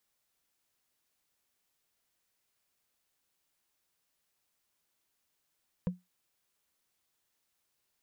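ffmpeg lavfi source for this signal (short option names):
-f lavfi -i "aevalsrc='0.0631*pow(10,-3*t/0.19)*sin(2*PI*180*t)+0.0251*pow(10,-3*t/0.056)*sin(2*PI*496.3*t)+0.01*pow(10,-3*t/0.025)*sin(2*PI*972.7*t)+0.00398*pow(10,-3*t/0.014)*sin(2*PI*1607.9*t)+0.00158*pow(10,-3*t/0.008)*sin(2*PI*2401.2*t)':d=0.45:s=44100"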